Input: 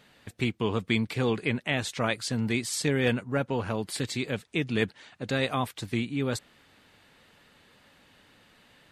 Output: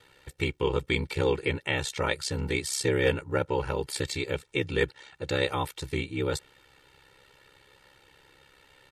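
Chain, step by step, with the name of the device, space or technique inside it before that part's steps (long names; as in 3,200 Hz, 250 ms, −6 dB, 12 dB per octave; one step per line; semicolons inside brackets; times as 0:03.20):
ring-modulated robot voice (ring modulation 33 Hz; comb filter 2.2 ms, depth 79%)
level +1.5 dB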